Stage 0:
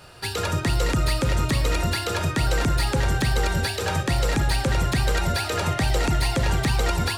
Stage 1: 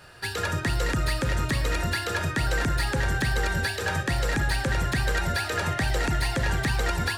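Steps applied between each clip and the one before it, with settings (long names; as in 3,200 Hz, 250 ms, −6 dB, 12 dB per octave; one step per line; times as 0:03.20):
parametric band 1,700 Hz +9 dB 0.36 octaves
level −4 dB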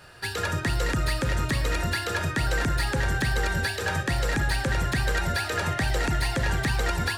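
no processing that can be heard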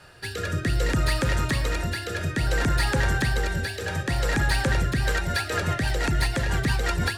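rotating-speaker cabinet horn 0.6 Hz, later 6 Hz, at 0:04.61
level +3 dB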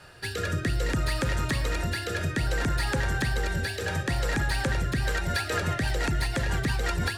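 downward compressor, threshold −23 dBFS, peak gain reduction 5 dB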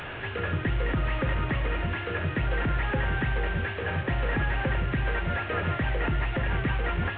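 linear delta modulator 16 kbit/s, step −30.5 dBFS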